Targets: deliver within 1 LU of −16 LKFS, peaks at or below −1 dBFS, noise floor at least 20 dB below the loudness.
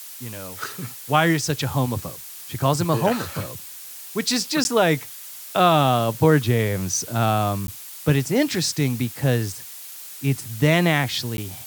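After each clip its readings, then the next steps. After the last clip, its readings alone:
number of dropouts 3; longest dropout 11 ms; background noise floor −39 dBFS; target noise floor −42 dBFS; integrated loudness −21.5 LKFS; sample peak −4.5 dBFS; target loudness −16.0 LKFS
→ repair the gap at 0:04.64/0:07.67/0:11.37, 11 ms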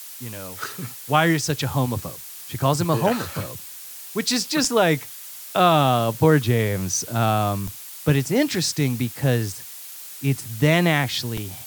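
number of dropouts 0; background noise floor −39 dBFS; target noise floor −42 dBFS
→ noise reduction from a noise print 6 dB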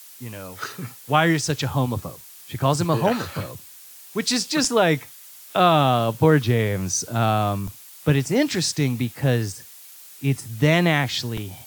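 background noise floor −45 dBFS; integrated loudness −21.5 LKFS; sample peak −4.5 dBFS; target loudness −16.0 LKFS
→ level +5.5 dB
brickwall limiter −1 dBFS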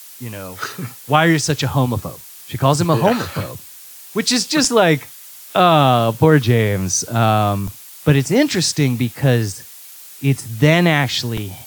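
integrated loudness −16.5 LKFS; sample peak −1.0 dBFS; background noise floor −39 dBFS

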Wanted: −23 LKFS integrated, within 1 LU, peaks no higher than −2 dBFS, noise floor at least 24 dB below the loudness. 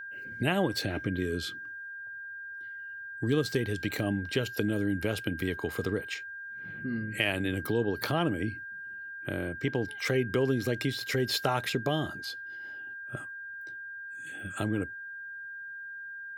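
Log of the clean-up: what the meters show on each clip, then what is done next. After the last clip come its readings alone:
interfering tone 1,600 Hz; level of the tone −39 dBFS; integrated loudness −32.5 LKFS; sample peak −10.5 dBFS; target loudness −23.0 LKFS
→ notch filter 1,600 Hz, Q 30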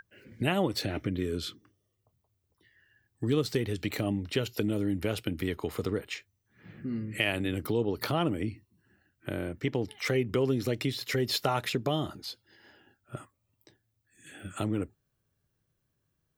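interfering tone none found; integrated loudness −31.5 LKFS; sample peak −11.0 dBFS; target loudness −23.0 LKFS
→ level +8.5 dB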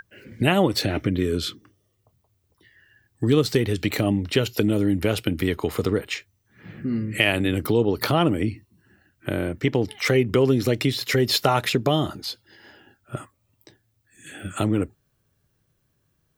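integrated loudness −23.0 LKFS; sample peak −2.5 dBFS; background noise floor −70 dBFS

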